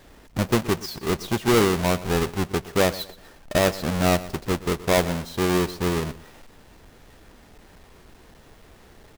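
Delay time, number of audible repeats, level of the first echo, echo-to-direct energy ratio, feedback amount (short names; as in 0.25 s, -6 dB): 0.122 s, 2, -17.5 dB, -17.0 dB, 30%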